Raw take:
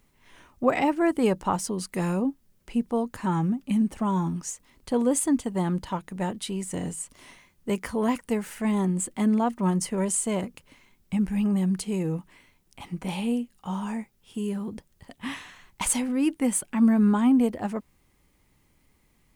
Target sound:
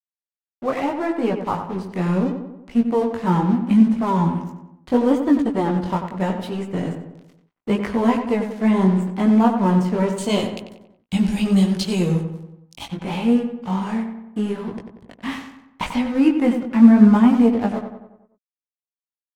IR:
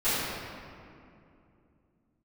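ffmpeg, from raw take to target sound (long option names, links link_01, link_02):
-filter_complex "[0:a]aemphasis=mode=reproduction:type=50fm,acrossover=split=4900[link_01][link_02];[link_02]acompressor=threshold=-57dB:ratio=4:attack=1:release=60[link_03];[link_01][link_03]amix=inputs=2:normalize=0,asettb=1/sr,asplit=3[link_04][link_05][link_06];[link_04]atrim=end=10.184[link_07];[link_05]atrim=start=10.18:end=12.86,asetpts=PTS-STARTPTS,afade=type=in:duration=0.004:curve=qsin,afade=type=out:start_time=2.676:duration=0.004:curve=qsin,highshelf=frequency=2600:width_type=q:width=1.5:gain=13.5[link_08];[link_06]atrim=start=12.856[link_09];[link_07][link_08]acrossfade=duration=0.004:curve1=hsin:curve2=qsin[link_10];[link_10][link_09]acrossfade=duration=0.004:curve1=qsin:curve2=hsin,dynaudnorm=framelen=390:gausssize=9:maxgain=7.5dB,aeval=exprs='sgn(val(0))*max(abs(val(0))-0.0141,0)':channel_layout=same,flanger=delay=17:depth=5.5:speed=0.75,asplit=2[link_11][link_12];[link_12]adelay=93,lowpass=frequency=2400:poles=1,volume=-7dB,asplit=2[link_13][link_14];[link_14]adelay=93,lowpass=frequency=2400:poles=1,volume=0.53,asplit=2[link_15][link_16];[link_16]adelay=93,lowpass=frequency=2400:poles=1,volume=0.53,asplit=2[link_17][link_18];[link_18]adelay=93,lowpass=frequency=2400:poles=1,volume=0.53,asplit=2[link_19][link_20];[link_20]adelay=93,lowpass=frequency=2400:poles=1,volume=0.53,asplit=2[link_21][link_22];[link_22]adelay=93,lowpass=frequency=2400:poles=1,volume=0.53[link_23];[link_11][link_13][link_15][link_17][link_19][link_21][link_23]amix=inputs=7:normalize=0,volume=3dB" -ar 48000 -c:a aac -b:a 64k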